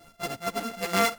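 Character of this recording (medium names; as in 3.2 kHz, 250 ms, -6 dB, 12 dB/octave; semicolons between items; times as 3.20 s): a buzz of ramps at a fixed pitch in blocks of 64 samples; chopped level 4.3 Hz, depth 65%, duty 65%; a shimmering, thickened sound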